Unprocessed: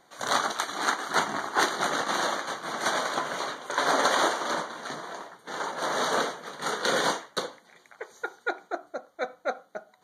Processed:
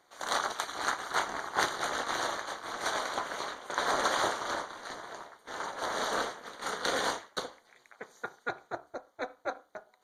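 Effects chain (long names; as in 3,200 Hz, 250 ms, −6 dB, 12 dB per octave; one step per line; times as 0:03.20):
high-pass filter 310 Hz
amplitude modulation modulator 230 Hz, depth 65%
level −1.5 dB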